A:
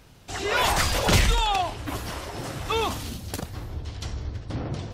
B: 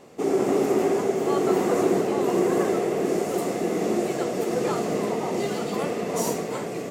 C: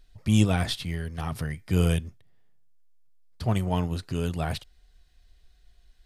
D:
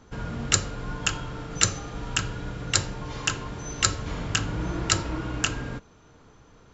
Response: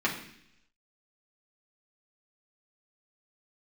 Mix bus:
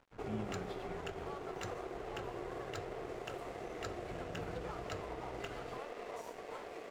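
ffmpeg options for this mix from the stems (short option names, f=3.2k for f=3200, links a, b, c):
-filter_complex "[1:a]highpass=550,volume=-6dB[a];[2:a]acompressor=threshold=-36dB:ratio=2.5,volume=-8dB,asplit=3[b][c][d];[b]atrim=end=1.28,asetpts=PTS-STARTPTS,afade=t=out:st=1.276:d=0.004:c=hsin[e];[c]atrim=start=1.28:end=4.07,asetpts=PTS-STARTPTS,volume=0[f];[d]atrim=start=4.07,asetpts=PTS-STARTPTS,afade=t=in:d=0.004:c=hsin[g];[e][f][g]concat=n=3:v=0:a=1,asplit=2[h][i];[i]volume=-14.5dB[j];[3:a]acompressor=mode=upward:threshold=-37dB:ratio=2.5,volume=-18dB[k];[a][h]amix=inputs=2:normalize=0,acompressor=threshold=-39dB:ratio=6,volume=0dB[l];[4:a]atrim=start_sample=2205[m];[j][m]afir=irnorm=-1:irlink=0[n];[k][l][n]amix=inputs=3:normalize=0,bass=f=250:g=1,treble=f=4k:g=-15,aeval=exprs='sgn(val(0))*max(abs(val(0))-0.00266,0)':c=same"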